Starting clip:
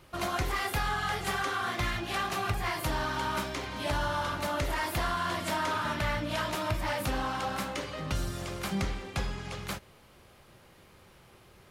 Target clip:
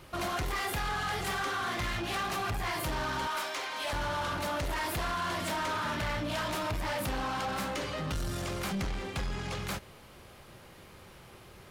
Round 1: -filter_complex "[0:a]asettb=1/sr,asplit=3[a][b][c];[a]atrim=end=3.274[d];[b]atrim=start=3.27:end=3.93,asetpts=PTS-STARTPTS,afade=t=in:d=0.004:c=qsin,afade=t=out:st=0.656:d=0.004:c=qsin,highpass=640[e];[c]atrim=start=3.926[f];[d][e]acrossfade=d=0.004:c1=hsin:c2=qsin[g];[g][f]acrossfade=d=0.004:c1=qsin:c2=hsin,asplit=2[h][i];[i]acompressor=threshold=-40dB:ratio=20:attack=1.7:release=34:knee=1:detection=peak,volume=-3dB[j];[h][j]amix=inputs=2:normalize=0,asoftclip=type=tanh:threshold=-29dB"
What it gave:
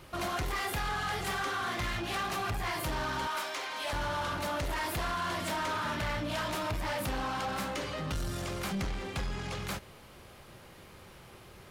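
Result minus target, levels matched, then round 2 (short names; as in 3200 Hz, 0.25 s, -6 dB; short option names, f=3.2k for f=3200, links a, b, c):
compressor: peak gain reduction +5.5 dB
-filter_complex "[0:a]asettb=1/sr,asplit=3[a][b][c];[a]atrim=end=3.274[d];[b]atrim=start=3.27:end=3.93,asetpts=PTS-STARTPTS,afade=t=in:d=0.004:c=qsin,afade=t=out:st=0.656:d=0.004:c=qsin,highpass=640[e];[c]atrim=start=3.926[f];[d][e]acrossfade=d=0.004:c1=hsin:c2=qsin[g];[g][f]acrossfade=d=0.004:c1=qsin:c2=hsin,asplit=2[h][i];[i]acompressor=threshold=-34dB:ratio=20:attack=1.7:release=34:knee=1:detection=peak,volume=-3dB[j];[h][j]amix=inputs=2:normalize=0,asoftclip=type=tanh:threshold=-29dB"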